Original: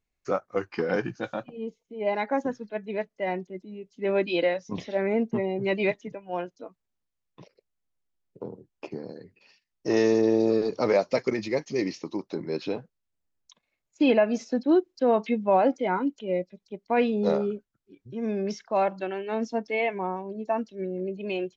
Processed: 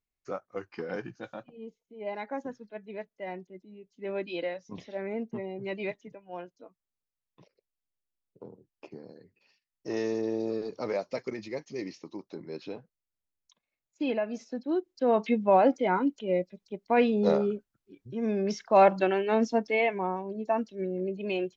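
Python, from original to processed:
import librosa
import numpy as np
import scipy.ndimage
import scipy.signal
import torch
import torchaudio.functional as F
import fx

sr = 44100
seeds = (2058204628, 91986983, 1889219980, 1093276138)

y = fx.gain(x, sr, db=fx.line((14.69, -9.0), (15.25, 0.0), (18.45, 0.0), (18.93, 7.0), (19.96, -0.5)))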